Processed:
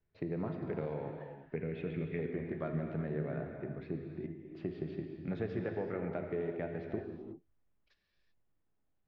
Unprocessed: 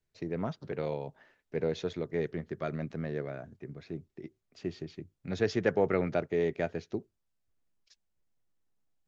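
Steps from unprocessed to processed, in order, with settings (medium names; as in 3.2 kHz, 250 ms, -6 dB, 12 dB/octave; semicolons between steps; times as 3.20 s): 1.56–2.19 s: FFT filter 210 Hz 0 dB, 980 Hz -13 dB, 2.5 kHz +8 dB, 3.7 kHz -8 dB, 6 kHz -14 dB; compression 10:1, threshold -36 dBFS, peak gain reduction 15 dB; distance through air 470 m; gated-style reverb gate 410 ms flat, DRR 2.5 dB; trim +3 dB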